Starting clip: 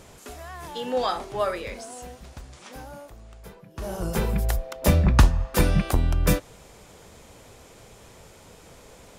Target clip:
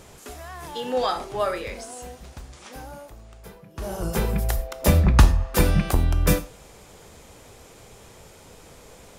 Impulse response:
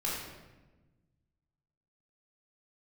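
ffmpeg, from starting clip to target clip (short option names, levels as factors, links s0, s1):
-filter_complex "[0:a]asplit=2[s0][s1];[1:a]atrim=start_sample=2205,afade=t=out:st=0.16:d=0.01,atrim=end_sample=7497,highshelf=f=6000:g=11[s2];[s1][s2]afir=irnorm=-1:irlink=0,volume=0.15[s3];[s0][s3]amix=inputs=2:normalize=0"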